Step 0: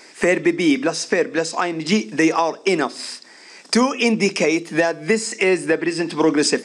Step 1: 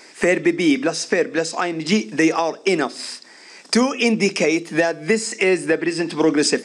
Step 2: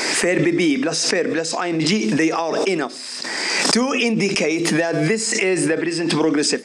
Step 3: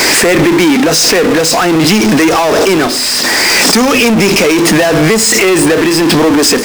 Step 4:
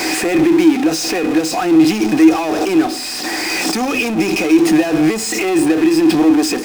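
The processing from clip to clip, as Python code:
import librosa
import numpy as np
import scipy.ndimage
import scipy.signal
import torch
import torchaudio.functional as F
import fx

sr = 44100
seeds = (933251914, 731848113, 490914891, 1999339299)

y1 = fx.dynamic_eq(x, sr, hz=1000.0, q=4.4, threshold_db=-38.0, ratio=4.0, max_db=-5)
y2 = fx.pre_swell(y1, sr, db_per_s=24.0)
y2 = y2 * 10.0 ** (-2.5 / 20.0)
y3 = fx.power_curve(y2, sr, exponent=0.35)
y4 = fx.small_body(y3, sr, hz=(320.0, 750.0, 2500.0), ring_ms=100, db=15)
y4 = y4 * 10.0 ** (-12.0 / 20.0)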